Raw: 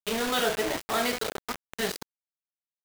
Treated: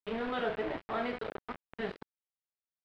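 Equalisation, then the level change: low-pass 9.1 kHz 12 dB/octave; distance through air 450 m; treble shelf 6.3 kHz -4.5 dB; -4.5 dB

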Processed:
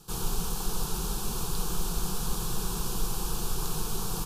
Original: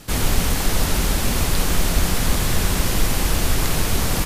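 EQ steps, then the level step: static phaser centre 400 Hz, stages 8; -9.0 dB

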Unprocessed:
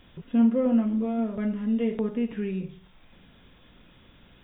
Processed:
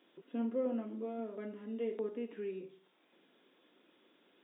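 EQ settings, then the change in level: ladder high-pass 290 Hz, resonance 50%; -2.5 dB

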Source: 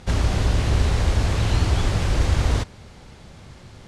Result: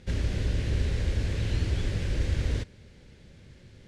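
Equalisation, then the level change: high-order bell 940 Hz -11 dB 1.2 oct; treble shelf 5.3 kHz -7 dB; -7.5 dB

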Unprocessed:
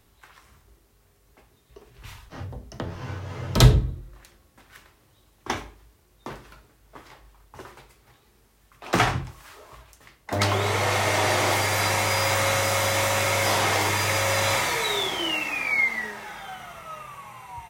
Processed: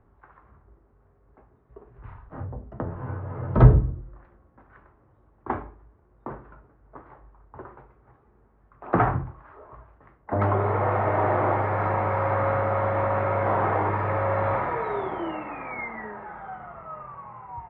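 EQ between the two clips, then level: low-pass 1.4 kHz 24 dB/octave; +1.5 dB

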